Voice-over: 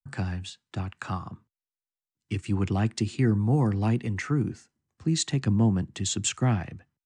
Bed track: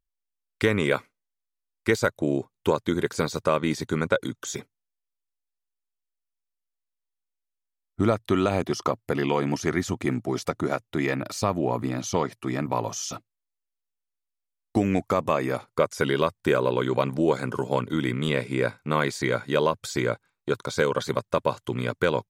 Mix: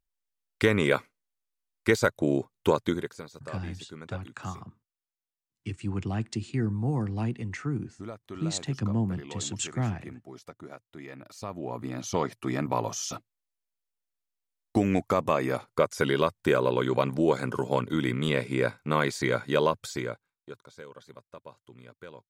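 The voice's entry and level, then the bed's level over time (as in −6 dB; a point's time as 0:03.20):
3.35 s, −5.0 dB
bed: 0:02.87 −0.5 dB
0:03.24 −18 dB
0:11.08 −18 dB
0:12.28 −1.5 dB
0:19.75 −1.5 dB
0:20.75 −22.5 dB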